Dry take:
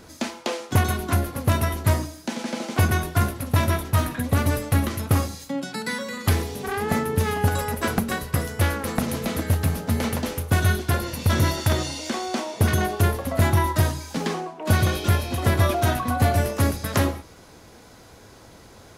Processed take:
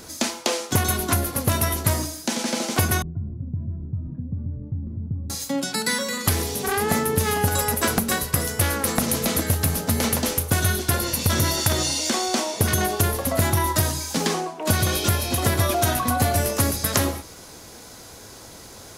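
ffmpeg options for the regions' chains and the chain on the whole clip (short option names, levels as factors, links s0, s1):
-filter_complex "[0:a]asettb=1/sr,asplit=3[s0][s1][s2];[s0]atrim=end=3.024[s3];[s1]atrim=start=3.02:end=5.3,asetpts=PTS-STARTPTS,afade=t=in:d=0.004:c=qsin,afade=t=out:st=2.276:d=0.004:c=qsin,acompressor=threshold=0.0447:ratio=8:attack=3.2:release=140:knee=1:detection=peak,lowpass=f=160:t=q:w=1.6[s4];[s2]atrim=start=5.296[s5];[s3][s4]acrossfade=d=0.004:c1=hsin:c2=qsin[s6];[s6][s5]acrossfade=d=0.004:c1=qsin:c2=hsin,bass=f=250:g=-2,treble=f=4000:g=9,acompressor=threshold=0.1:ratio=6,volume=1.5"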